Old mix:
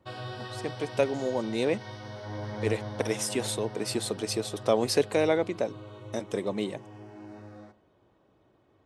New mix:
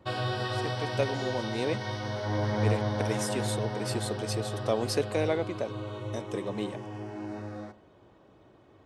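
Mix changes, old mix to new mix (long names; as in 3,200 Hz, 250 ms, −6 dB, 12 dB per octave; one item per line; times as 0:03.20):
speech −4.0 dB
background +7.5 dB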